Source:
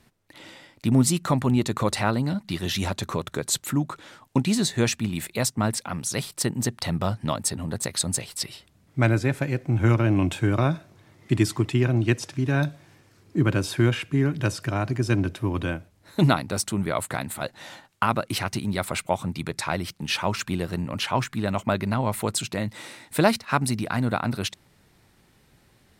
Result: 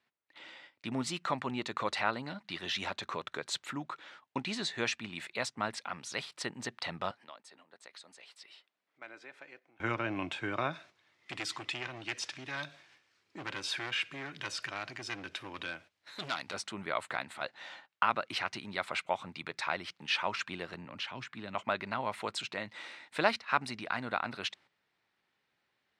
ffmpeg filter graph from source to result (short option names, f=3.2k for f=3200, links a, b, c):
-filter_complex "[0:a]asettb=1/sr,asplit=3[a][b][c];[a]atrim=end=7.114[d];[b]atrim=start=7.11:end=9.8,asetpts=PTS-STARTPTS,afade=t=in:d=0.004:c=qsin,afade=t=out:st=2.686:d=0.004:c=qsin,highpass=330,acompressor=threshold=-50dB:ratio=2:attack=3.2:release=140:knee=1:detection=peak[e];[c]atrim=start=9.796[f];[d][e]acrossfade=d=0.004:c1=hsin:c2=qsin[g];[g][f]acrossfade=d=0.004:c1=qsin:c2=hsin,asettb=1/sr,asplit=3[h][i][j];[h]atrim=end=10.734[k];[i]atrim=start=10.73:end=16.54,asetpts=PTS-STARTPTS,afade=t=in:d=0.004:c=qsin,afade=t=out:st=5.806:d=0.004:c=qsin,volume=20dB,asoftclip=hard,volume=-20dB,acompressor=threshold=-32dB:ratio=2:attack=3.2:release=140:knee=1:detection=peak,highshelf=f=2.2k:g=11.5[l];[j]atrim=start=16.536[m];[k][l]acrossfade=d=0.004:c1=hsin:c2=qsin[n];[n][m]acrossfade=d=0.004:c1=qsin:c2=hsin,asettb=1/sr,asplit=3[o][p][q];[o]atrim=end=20.744[r];[p]atrim=start=20.74:end=21.55,asetpts=PTS-STARTPTS,afade=t=in:d=0.004:c=qsin,afade=t=out:st=0.806:d=0.004:c=qsin,highshelf=f=4k:g=-7,acrossover=split=340|3000[s][t][u];[t]acompressor=threshold=-38dB:ratio=5:attack=3.2:release=140:knee=2.83:detection=peak[v];[s][v][u]amix=inputs=3:normalize=0[w];[q]atrim=start=21.546[x];[r][w]acrossfade=d=0.004:c1=hsin:c2=qsin[y];[y][x]acrossfade=d=0.004:c1=qsin:c2=hsin,highpass=f=1.4k:p=1,agate=range=-10dB:threshold=-52dB:ratio=16:detection=peak,lowpass=3.3k,volume=-1dB"